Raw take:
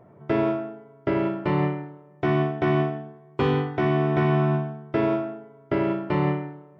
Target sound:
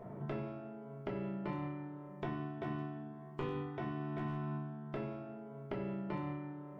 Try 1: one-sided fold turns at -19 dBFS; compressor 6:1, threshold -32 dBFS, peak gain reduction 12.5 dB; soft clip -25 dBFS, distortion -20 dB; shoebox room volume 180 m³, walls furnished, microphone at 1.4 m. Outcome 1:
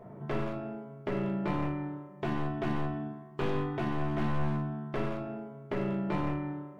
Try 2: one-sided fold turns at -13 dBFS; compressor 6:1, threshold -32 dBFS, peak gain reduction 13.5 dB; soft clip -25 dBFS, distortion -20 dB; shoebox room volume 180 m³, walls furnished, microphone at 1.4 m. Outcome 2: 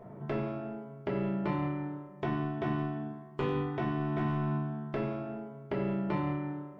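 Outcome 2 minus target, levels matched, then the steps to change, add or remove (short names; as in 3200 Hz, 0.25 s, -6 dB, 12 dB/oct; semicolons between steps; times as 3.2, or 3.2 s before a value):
compressor: peak gain reduction -9 dB
change: compressor 6:1, threshold -42.5 dBFS, peak gain reduction 22.5 dB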